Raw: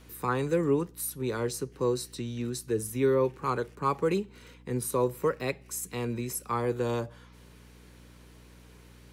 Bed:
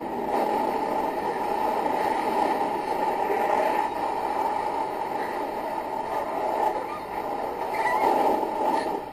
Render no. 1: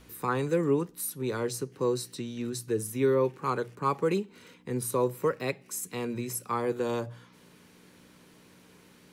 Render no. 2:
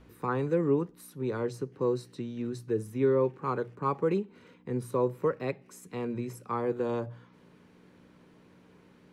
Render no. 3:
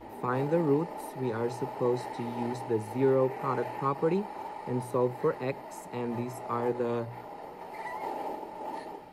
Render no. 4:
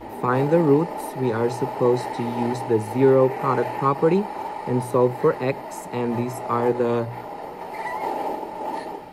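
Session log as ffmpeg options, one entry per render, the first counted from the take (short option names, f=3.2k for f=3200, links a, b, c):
-af "bandreject=f=60:t=h:w=4,bandreject=f=120:t=h:w=4"
-af "lowpass=f=1.3k:p=1"
-filter_complex "[1:a]volume=-14dB[a];[0:a][a]amix=inputs=2:normalize=0"
-af "volume=9dB"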